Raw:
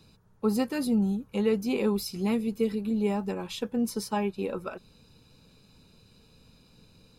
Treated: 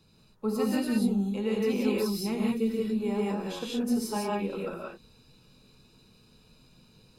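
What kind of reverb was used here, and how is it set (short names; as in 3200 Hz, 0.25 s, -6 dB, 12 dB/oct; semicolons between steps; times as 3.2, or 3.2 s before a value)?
non-linear reverb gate 0.21 s rising, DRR -4 dB; gain -5.5 dB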